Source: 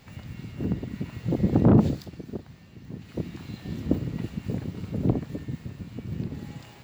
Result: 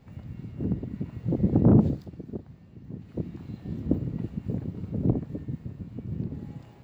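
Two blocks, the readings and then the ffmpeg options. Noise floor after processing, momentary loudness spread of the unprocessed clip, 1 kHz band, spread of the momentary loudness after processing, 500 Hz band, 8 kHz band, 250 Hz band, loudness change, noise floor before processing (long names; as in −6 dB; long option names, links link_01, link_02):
−50 dBFS, 19 LU, −5.0 dB, 19 LU, −2.0 dB, can't be measured, −0.5 dB, −0.5 dB, −49 dBFS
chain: -af "tiltshelf=frequency=1200:gain=7.5,volume=-7.5dB"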